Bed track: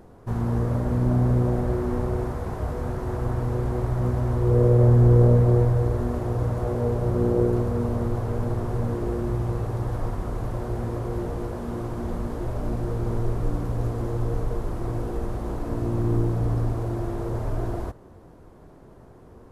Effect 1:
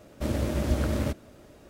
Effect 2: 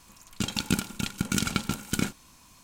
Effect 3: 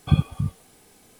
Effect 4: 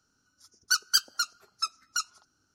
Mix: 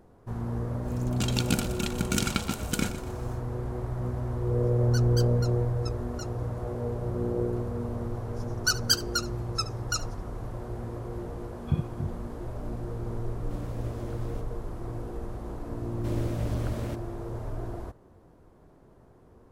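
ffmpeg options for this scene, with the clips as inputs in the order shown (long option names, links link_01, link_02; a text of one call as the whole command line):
ffmpeg -i bed.wav -i cue0.wav -i cue1.wav -i cue2.wav -i cue3.wav -filter_complex "[4:a]asplit=2[link_01][link_02];[1:a]asplit=2[link_03][link_04];[0:a]volume=-7.5dB[link_05];[2:a]aecho=1:1:122|244|366|488:0.224|0.0895|0.0358|0.0143[link_06];[link_02]aecho=1:1:72:0.126[link_07];[3:a]bass=frequency=250:gain=7,treble=frequency=4000:gain=-7[link_08];[link_04]asoftclip=type=hard:threshold=-19.5dB[link_09];[link_06]atrim=end=2.63,asetpts=PTS-STARTPTS,volume=-1dB,afade=type=in:duration=0.1,afade=type=out:start_time=2.53:duration=0.1,adelay=800[link_10];[link_01]atrim=end=2.54,asetpts=PTS-STARTPTS,volume=-14dB,afade=type=in:duration=0.004:curve=hsin,afade=type=out:start_time=2.536:duration=0.004:curve=hsin,adelay=4230[link_11];[link_07]atrim=end=2.54,asetpts=PTS-STARTPTS,volume=-0.5dB,afade=type=in:duration=0.004:curve=hsin,afade=type=out:start_time=2.536:duration=0.004:curve=hsin,adelay=7960[link_12];[link_08]atrim=end=1.19,asetpts=PTS-STARTPTS,volume=-14.5dB,afade=type=in:duration=0.004:curve=hsin,afade=type=out:start_time=1.186:duration=0.004:curve=hsin,adelay=11600[link_13];[link_03]atrim=end=1.69,asetpts=PTS-STARTPTS,volume=-16dB,afade=type=in:duration=0.004:curve=hsin,afade=type=out:start_time=1.686:duration=0.004:curve=hsin,adelay=13290[link_14];[link_09]atrim=end=1.69,asetpts=PTS-STARTPTS,volume=-7.5dB,afade=type=in:duration=0.004:curve=hsin,afade=type=out:start_time=1.686:duration=0.004:curve=hsin,adelay=15830[link_15];[link_05][link_10][link_11][link_12][link_13][link_14][link_15]amix=inputs=7:normalize=0" out.wav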